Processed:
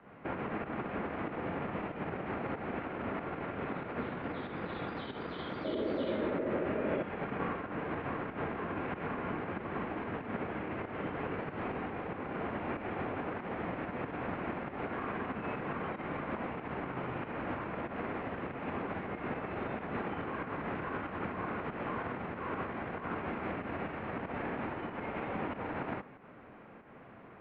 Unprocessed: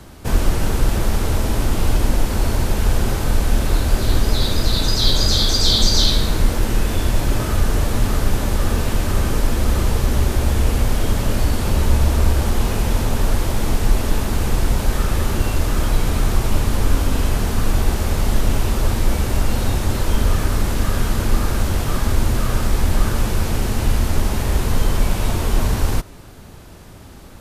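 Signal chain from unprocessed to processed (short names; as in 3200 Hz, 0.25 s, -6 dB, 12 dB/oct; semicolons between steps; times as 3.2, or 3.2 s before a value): limiter -12.5 dBFS, peak gain reduction 10 dB; pump 94 bpm, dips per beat 1, -9 dB, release 0.154 s; painted sound noise, 5.64–7.03, 340–800 Hz -29 dBFS; mistuned SSB -140 Hz 310–2500 Hz; gain -5.5 dB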